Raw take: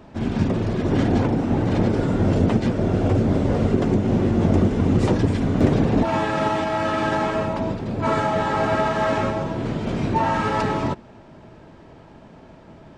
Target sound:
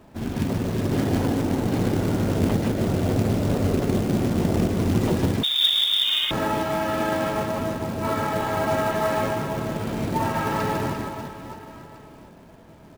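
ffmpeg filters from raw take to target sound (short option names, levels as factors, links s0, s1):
-filter_complex "[0:a]aecho=1:1:150|345|598.5|928|1356:0.631|0.398|0.251|0.158|0.1,asettb=1/sr,asplit=3[s0][s1][s2];[s0]atrim=end=5.434[s3];[s1]atrim=start=5.43:end=6.31,asetpts=PTS-STARTPTS,afade=t=in:d=0.004:c=qsin,afade=t=out:st=0.876:d=0.004:c=qsin,lowpass=f=3200:t=q:w=0.5098,lowpass=f=3200:t=q:w=0.6013,lowpass=f=3200:t=q:w=0.9,lowpass=f=3200:t=q:w=2.563,afreqshift=-3800[s4];[s2]atrim=start=6.306[s5];[s3][s4]acrossfade=d=0.004:c1=hsin:c2=qsin[s6];[s6][s5]acrossfade=d=0.004:c1=qsin:c2=hsin,acrusher=bits=4:mode=log:mix=0:aa=0.000001,volume=0.562"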